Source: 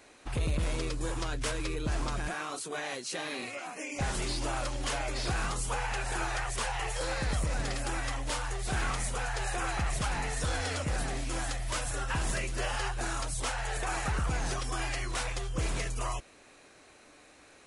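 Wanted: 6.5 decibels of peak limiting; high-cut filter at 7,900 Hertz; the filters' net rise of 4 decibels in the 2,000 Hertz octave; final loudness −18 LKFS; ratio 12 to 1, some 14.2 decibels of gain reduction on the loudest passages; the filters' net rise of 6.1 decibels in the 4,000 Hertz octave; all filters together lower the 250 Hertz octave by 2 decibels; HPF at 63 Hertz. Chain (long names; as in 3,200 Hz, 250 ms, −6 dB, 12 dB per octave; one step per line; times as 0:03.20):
high-pass filter 63 Hz
low-pass filter 7,900 Hz
parametric band 250 Hz −3 dB
parametric band 2,000 Hz +3.5 dB
parametric band 4,000 Hz +7 dB
downward compressor 12 to 1, threshold −42 dBFS
level +28.5 dB
brickwall limiter −8.5 dBFS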